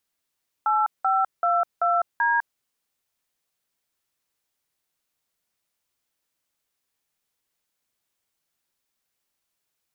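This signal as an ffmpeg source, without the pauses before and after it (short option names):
-f lavfi -i "aevalsrc='0.0891*clip(min(mod(t,0.385),0.203-mod(t,0.385))/0.002,0,1)*(eq(floor(t/0.385),0)*(sin(2*PI*852*mod(t,0.385))+sin(2*PI*1336*mod(t,0.385)))+eq(floor(t/0.385),1)*(sin(2*PI*770*mod(t,0.385))+sin(2*PI*1336*mod(t,0.385)))+eq(floor(t/0.385),2)*(sin(2*PI*697*mod(t,0.385))+sin(2*PI*1336*mod(t,0.385)))+eq(floor(t/0.385),3)*(sin(2*PI*697*mod(t,0.385))+sin(2*PI*1336*mod(t,0.385)))+eq(floor(t/0.385),4)*(sin(2*PI*941*mod(t,0.385))+sin(2*PI*1633*mod(t,0.385))))':d=1.925:s=44100"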